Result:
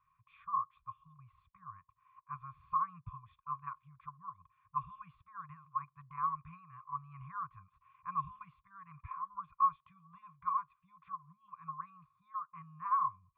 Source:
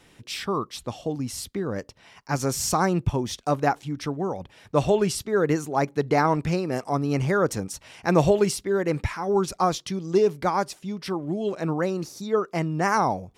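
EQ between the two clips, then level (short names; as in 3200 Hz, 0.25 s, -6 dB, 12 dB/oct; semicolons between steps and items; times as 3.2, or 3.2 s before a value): vocal tract filter a; brick-wall FIR band-stop 180–1000 Hz; bell 220 Hz -9 dB 0.73 oct; +6.0 dB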